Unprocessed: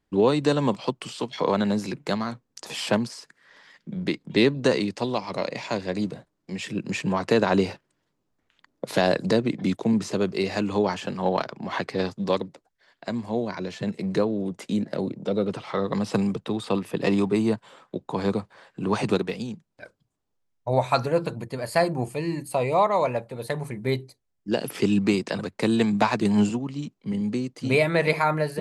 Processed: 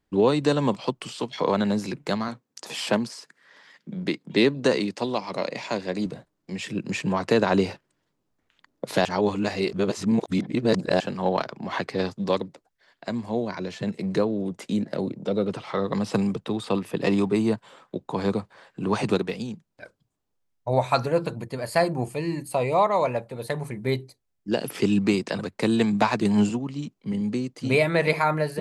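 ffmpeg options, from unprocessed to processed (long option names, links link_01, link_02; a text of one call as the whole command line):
ffmpeg -i in.wav -filter_complex "[0:a]asettb=1/sr,asplit=3[link_01][link_02][link_03];[link_01]atrim=end=2.284[link_04];[link_02]atrim=start=2.28:end=6.06,asetpts=PTS-STARTPTS,afade=type=in:duration=0.004:curve=qsin,afade=type=out:start_time=3.776:duration=0.004:curve=qsin,highpass=140[link_05];[link_03]atrim=start=6.056[link_06];[link_04][link_05]acrossfade=duration=0.004:curve1=hsin:curve2=qsin[link_07];[link_07][link_06]acrossfade=duration=0.004:curve1=qsin:curve2=hsin,asplit=3[link_08][link_09][link_10];[link_08]atrim=end=9.052[link_11];[link_09]atrim=start=9.048:end=11.002,asetpts=PTS-STARTPTS,areverse[link_12];[link_10]atrim=start=10.998[link_13];[link_11][link_12]acrossfade=duration=0.004:curve1=hsin:curve2=hsin[link_14];[link_14][link_13]acrossfade=duration=0.004:curve1=hsin:curve2=hsin" out.wav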